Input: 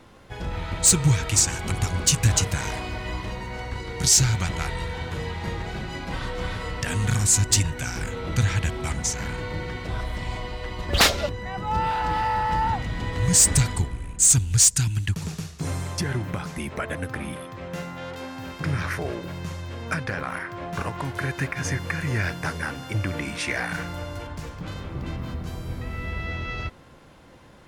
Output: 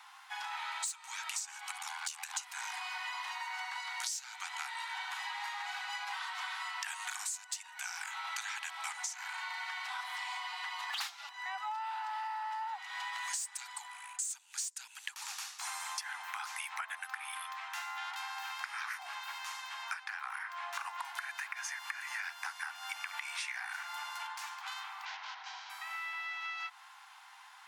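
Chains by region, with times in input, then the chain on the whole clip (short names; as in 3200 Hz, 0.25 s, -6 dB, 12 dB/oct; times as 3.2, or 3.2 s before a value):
1.77–2.37 ring modulator 40 Hz + compressor, threshold -24 dBFS
25.05–25.7 self-modulated delay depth 0.28 ms + steep low-pass 6300 Hz 48 dB/oct + notch 1200 Hz, Q 7.5
whole clip: steep high-pass 770 Hz 96 dB/oct; compressor 20:1, threshold -37 dBFS; gain +1 dB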